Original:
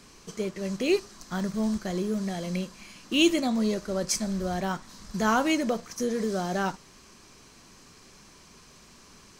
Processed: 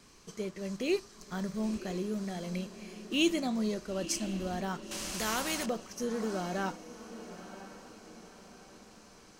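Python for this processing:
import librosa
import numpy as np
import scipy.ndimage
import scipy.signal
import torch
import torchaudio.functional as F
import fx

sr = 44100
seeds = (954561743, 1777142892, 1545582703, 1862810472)

y = fx.vibrato(x, sr, rate_hz=1.8, depth_cents=12.0)
y = fx.echo_diffused(y, sr, ms=985, feedback_pct=46, wet_db=-13.5)
y = fx.spectral_comp(y, sr, ratio=2.0, at=(4.91, 5.66))
y = F.gain(torch.from_numpy(y), -6.0).numpy()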